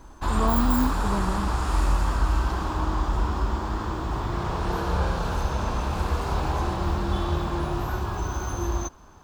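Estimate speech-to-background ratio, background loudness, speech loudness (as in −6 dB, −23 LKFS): −1.0 dB, −27.5 LKFS, −28.5 LKFS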